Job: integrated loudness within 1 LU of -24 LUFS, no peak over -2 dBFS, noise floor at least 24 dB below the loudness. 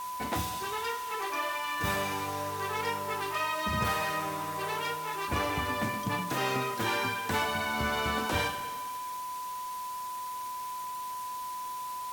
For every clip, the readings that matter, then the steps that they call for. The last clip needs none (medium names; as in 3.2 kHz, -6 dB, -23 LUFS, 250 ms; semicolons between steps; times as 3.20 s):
steady tone 1 kHz; tone level -35 dBFS; noise floor -38 dBFS; noise floor target -57 dBFS; loudness -32.5 LUFS; peak level -16.0 dBFS; loudness target -24.0 LUFS
-> band-stop 1 kHz, Q 30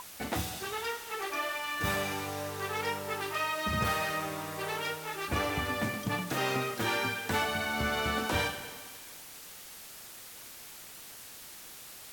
steady tone not found; noise floor -48 dBFS; noise floor target -57 dBFS
-> noise reduction 9 dB, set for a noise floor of -48 dBFS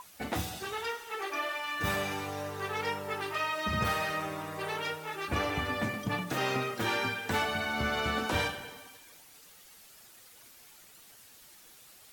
noise floor -56 dBFS; noise floor target -57 dBFS
-> noise reduction 6 dB, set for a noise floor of -56 dBFS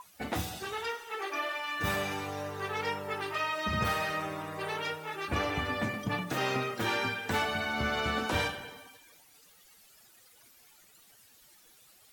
noise floor -60 dBFS; loudness -32.5 LUFS; peak level -17.0 dBFS; loudness target -24.0 LUFS
-> trim +8.5 dB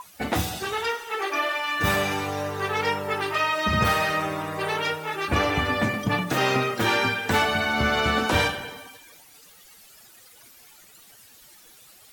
loudness -24.0 LUFS; peak level -8.5 dBFS; noise floor -52 dBFS